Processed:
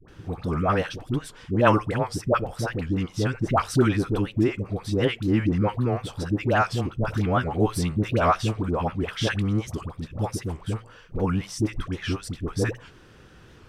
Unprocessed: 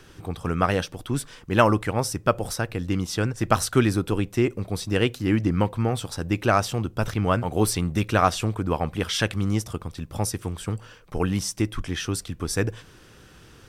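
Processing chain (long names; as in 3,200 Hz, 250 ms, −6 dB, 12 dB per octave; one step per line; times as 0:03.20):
high-shelf EQ 5,200 Hz −12 dB
all-pass dispersion highs, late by 84 ms, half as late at 720 Hz
wow of a warped record 78 rpm, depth 160 cents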